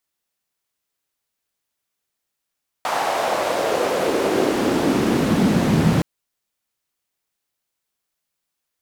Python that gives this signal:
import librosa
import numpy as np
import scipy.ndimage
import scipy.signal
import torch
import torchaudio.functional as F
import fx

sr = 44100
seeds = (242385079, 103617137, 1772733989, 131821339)

y = fx.riser_noise(sr, seeds[0], length_s=3.17, colour='white', kind='bandpass', start_hz=820.0, end_hz=150.0, q=2.4, swell_db=13.0, law='exponential')